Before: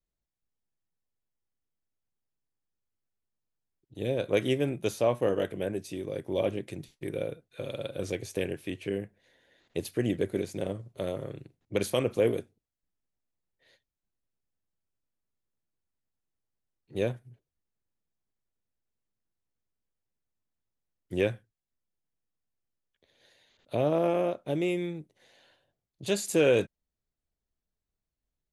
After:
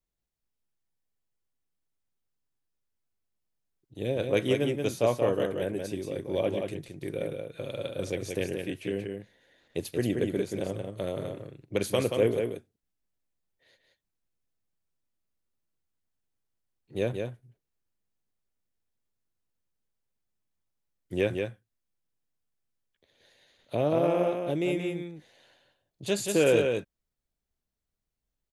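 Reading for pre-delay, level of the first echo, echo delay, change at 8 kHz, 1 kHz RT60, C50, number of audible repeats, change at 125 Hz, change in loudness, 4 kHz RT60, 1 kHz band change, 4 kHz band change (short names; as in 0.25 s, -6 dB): none, -5.0 dB, 0.179 s, +1.0 dB, none, none, 1, +1.0 dB, +1.0 dB, none, +1.0 dB, +1.0 dB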